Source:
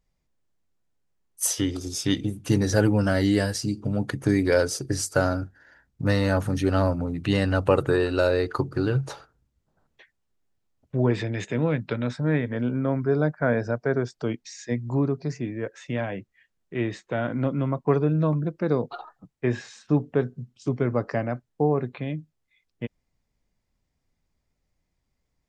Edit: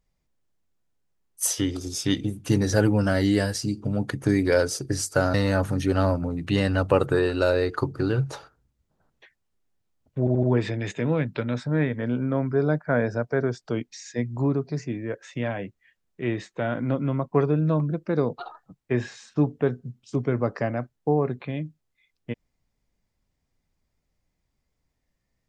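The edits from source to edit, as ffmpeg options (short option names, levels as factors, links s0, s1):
-filter_complex "[0:a]asplit=5[s0][s1][s2][s3][s4];[s0]atrim=end=5.342[s5];[s1]atrim=start=6.108:end=11.042[s6];[s2]atrim=start=10.958:end=11.042[s7];[s3]atrim=start=10.958:end=11.042[s8];[s4]atrim=start=10.958[s9];[s5][s6]acrossfade=d=0.004:c1=hsin:c2=hsin[s10];[s10][s7]acrossfade=d=0.004:c1=hsin:c2=hsin[s11];[s11][s8]acrossfade=d=0.004:c1=hsin:c2=hsin[s12];[s12][s9]acrossfade=d=0.004:c1=hsin:c2=hsin"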